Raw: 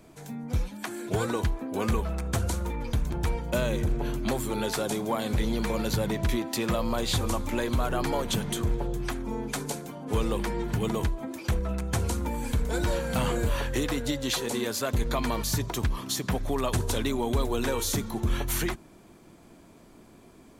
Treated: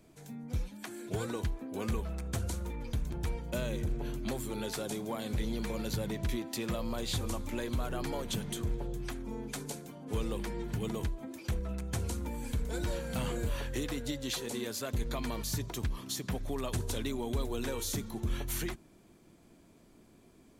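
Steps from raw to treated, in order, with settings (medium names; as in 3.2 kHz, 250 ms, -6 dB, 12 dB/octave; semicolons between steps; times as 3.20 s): peaking EQ 1 kHz -4.5 dB 1.6 oct; trim -6.5 dB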